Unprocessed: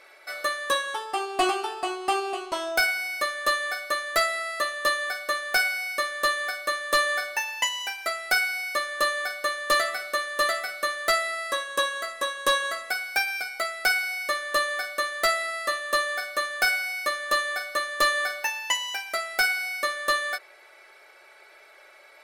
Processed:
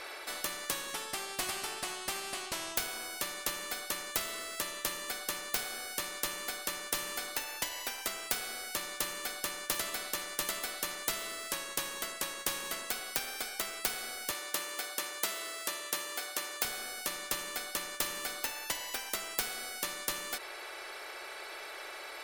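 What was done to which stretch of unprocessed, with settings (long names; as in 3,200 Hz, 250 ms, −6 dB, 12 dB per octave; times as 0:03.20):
0:14.31–0:16.65: high-pass filter 380 Hz
whole clip: every bin compressed towards the loudest bin 4 to 1; level +1 dB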